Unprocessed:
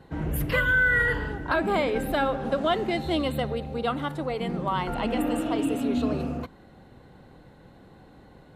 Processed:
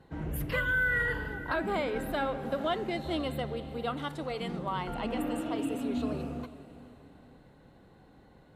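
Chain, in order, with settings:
0:03.97–0:04.59: parametric band 5,700 Hz +7 dB 2.3 octaves
feedback delay with all-pass diffusion 455 ms, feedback 40%, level −16 dB
level −6.5 dB

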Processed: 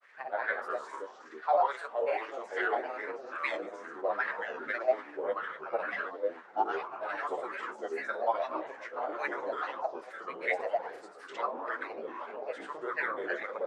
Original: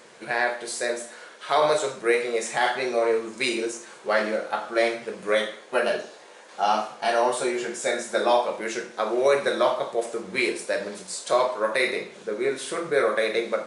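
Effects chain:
granular cloud 100 ms, grains 20 per second, pitch spread up and down by 3 semitones
LFO wah 2.4 Hz 670–1,900 Hz, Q 3.9
delay with pitch and tempo change per echo 83 ms, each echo −4 semitones, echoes 2, each echo −6 dB

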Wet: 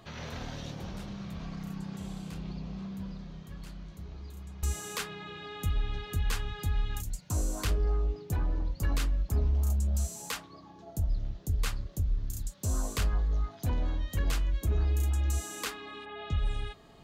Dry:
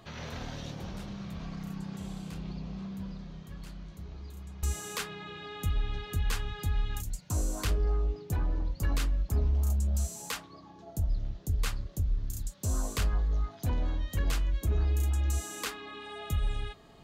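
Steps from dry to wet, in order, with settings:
0:16.04–0:16.44: low-pass filter 2,700 Hz → 6,700 Hz 24 dB per octave

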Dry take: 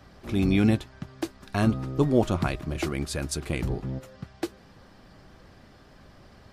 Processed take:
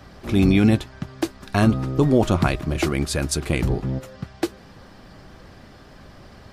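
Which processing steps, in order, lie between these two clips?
boost into a limiter +13 dB
level −6 dB

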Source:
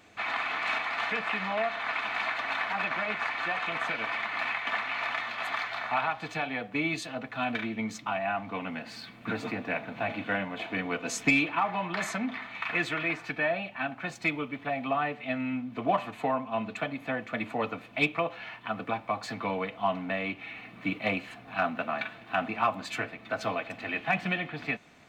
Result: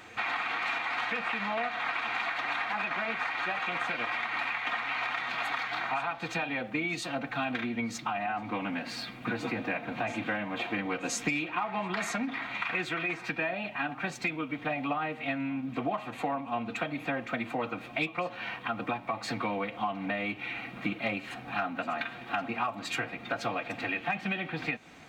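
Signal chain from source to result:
downward compressor 4 to 1, threshold −35 dBFS, peak gain reduction 13.5 dB
phase-vocoder pitch shift with formants kept +1 semitone
on a send: backwards echo 1,021 ms −20.5 dB
on the sum: level +5.5 dB

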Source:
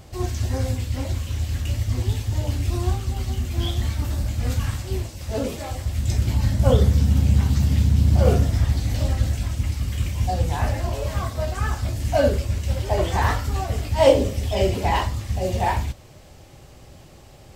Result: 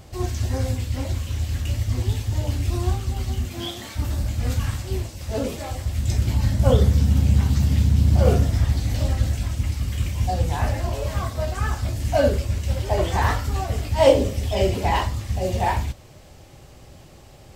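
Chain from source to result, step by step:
0:03.48–0:03.95: high-pass filter 130 Hz → 370 Hz 12 dB per octave

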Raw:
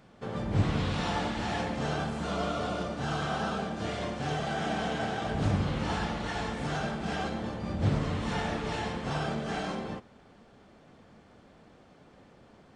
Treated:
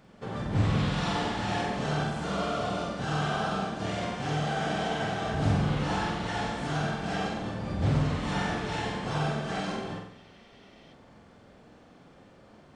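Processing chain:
flutter between parallel walls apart 8 metres, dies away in 0.65 s
healed spectral selection 0:10.12–0:10.91, 1,800–6,200 Hz before

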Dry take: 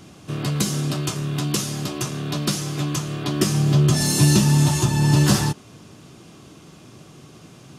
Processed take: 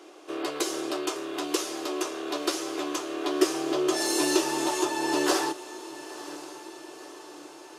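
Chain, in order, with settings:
elliptic high-pass filter 330 Hz, stop band 40 dB
spectral tilt −2 dB per octave
feedback delay with all-pass diffusion 1,001 ms, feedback 55%, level −15 dB

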